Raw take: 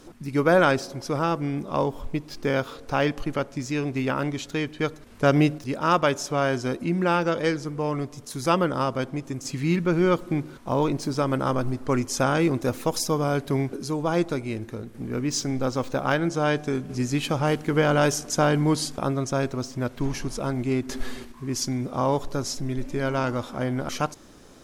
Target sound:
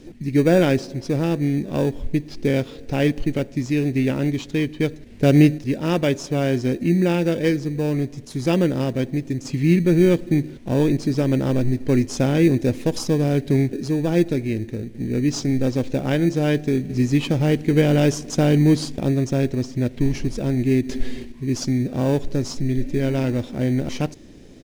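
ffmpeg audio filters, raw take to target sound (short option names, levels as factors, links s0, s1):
-filter_complex "[0:a]firequalizer=gain_entry='entry(310,0);entry(1200,-20);entry(1900,-3);entry(13000,-15)':delay=0.05:min_phase=1,asplit=2[s0][s1];[s1]acrusher=samples=21:mix=1:aa=0.000001,volume=0.282[s2];[s0][s2]amix=inputs=2:normalize=0,volume=1.78"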